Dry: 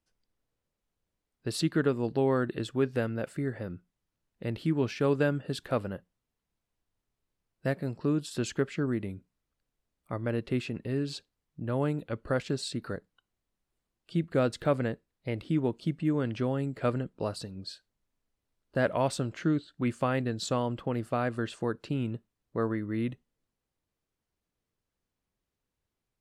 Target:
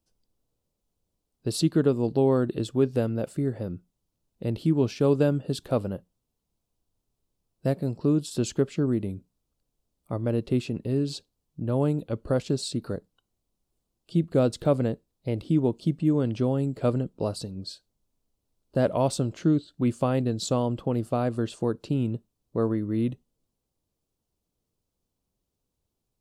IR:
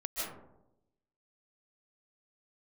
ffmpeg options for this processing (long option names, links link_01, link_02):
-af "equalizer=frequency=1800:width=1.1:gain=-13.5,volume=5.5dB"